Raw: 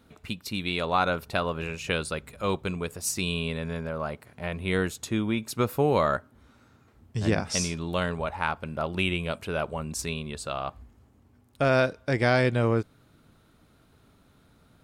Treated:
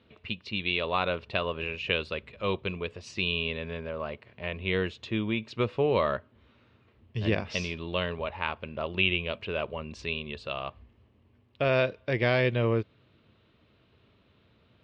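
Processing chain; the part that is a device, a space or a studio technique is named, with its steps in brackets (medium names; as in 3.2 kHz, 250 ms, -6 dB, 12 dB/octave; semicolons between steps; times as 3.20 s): guitar cabinet (cabinet simulation 78–3900 Hz, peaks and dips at 160 Hz -8 dB, 270 Hz -7 dB, 790 Hz -8 dB, 1.4 kHz -8 dB, 2.8 kHz +6 dB)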